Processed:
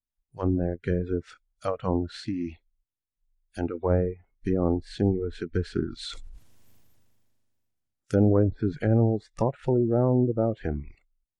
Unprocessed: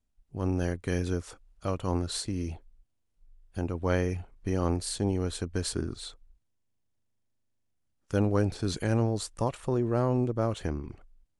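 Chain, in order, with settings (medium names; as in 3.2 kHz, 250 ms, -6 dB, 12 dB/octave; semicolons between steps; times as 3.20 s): low-pass that closes with the level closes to 730 Hz, closed at -24.5 dBFS; spectral noise reduction 22 dB; 6.05–8.39 s: decay stretcher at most 25 dB/s; trim +5.5 dB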